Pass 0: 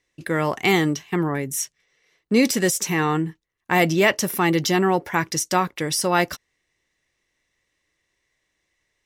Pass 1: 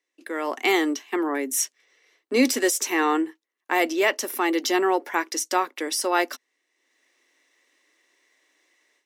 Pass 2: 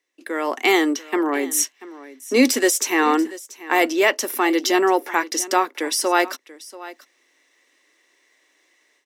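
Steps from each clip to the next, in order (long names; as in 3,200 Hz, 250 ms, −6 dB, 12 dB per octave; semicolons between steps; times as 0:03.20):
Chebyshev high-pass filter 250 Hz, order 6; automatic gain control gain up to 16 dB; level −7.5 dB
single-tap delay 686 ms −18 dB; level +4 dB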